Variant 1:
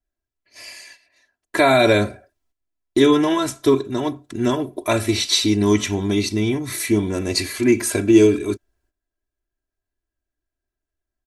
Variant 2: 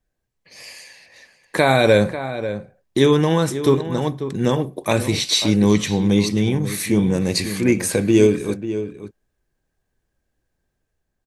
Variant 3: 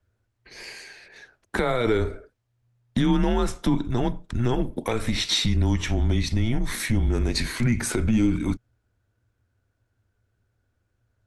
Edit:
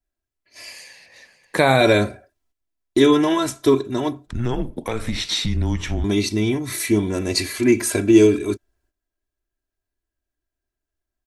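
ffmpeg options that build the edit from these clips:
-filter_complex "[0:a]asplit=3[s0][s1][s2];[s0]atrim=end=0.722[s3];[1:a]atrim=start=0.718:end=1.812[s4];[s1]atrim=start=1.808:end=4.272[s5];[2:a]atrim=start=4.268:end=6.042[s6];[s2]atrim=start=6.038[s7];[s3][s4]acrossfade=d=0.004:c1=hsin:c2=hsin[s8];[s8][s5]acrossfade=d=0.004:c1=hsin:c2=hsin[s9];[s9][s6]acrossfade=d=0.004:c1=hsin:c2=hsin[s10];[s10][s7]acrossfade=d=0.004:c1=hsin:c2=hsin"

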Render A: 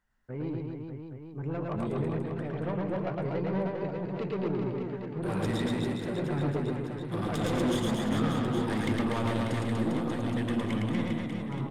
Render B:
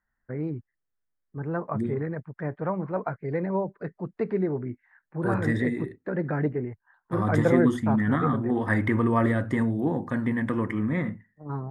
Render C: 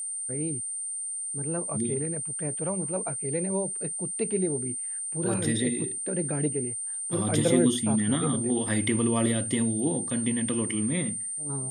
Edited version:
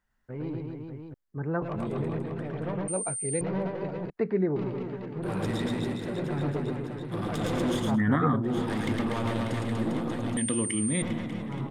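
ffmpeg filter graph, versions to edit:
-filter_complex "[1:a]asplit=3[s0][s1][s2];[2:a]asplit=2[s3][s4];[0:a]asplit=6[s5][s6][s7][s8][s9][s10];[s5]atrim=end=1.142[s11];[s0]atrim=start=1.138:end=1.622[s12];[s6]atrim=start=1.618:end=2.882[s13];[s3]atrim=start=2.878:end=3.412[s14];[s7]atrim=start=3.408:end=4.102[s15];[s1]atrim=start=4.098:end=4.562[s16];[s8]atrim=start=4.558:end=8[s17];[s2]atrim=start=7.84:end=8.58[s18];[s9]atrim=start=8.42:end=10.372[s19];[s4]atrim=start=10.368:end=11.022[s20];[s10]atrim=start=11.018[s21];[s11][s12]acrossfade=d=0.004:c1=hsin:c2=hsin[s22];[s22][s13]acrossfade=d=0.004:c1=hsin:c2=hsin[s23];[s23][s14]acrossfade=d=0.004:c1=hsin:c2=hsin[s24];[s24][s15]acrossfade=d=0.004:c1=hsin:c2=hsin[s25];[s25][s16]acrossfade=d=0.004:c1=hsin:c2=hsin[s26];[s26][s17]acrossfade=d=0.004:c1=hsin:c2=hsin[s27];[s27][s18]acrossfade=d=0.16:c1=tri:c2=tri[s28];[s28][s19]acrossfade=d=0.16:c1=tri:c2=tri[s29];[s29][s20]acrossfade=d=0.004:c1=hsin:c2=hsin[s30];[s30][s21]acrossfade=d=0.004:c1=hsin:c2=hsin"

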